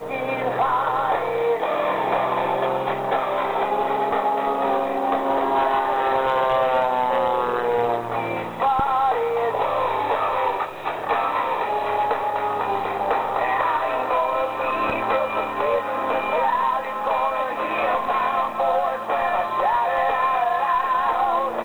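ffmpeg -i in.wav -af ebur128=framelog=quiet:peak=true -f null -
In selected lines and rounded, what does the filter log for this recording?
Integrated loudness:
  I:         -22.0 LUFS
  Threshold: -32.0 LUFS
Loudness range:
  LRA:         1.8 LU
  Threshold: -42.0 LUFS
  LRA low:   -22.7 LUFS
  LRA high:  -20.9 LUFS
True peak:
  Peak:      -12.2 dBFS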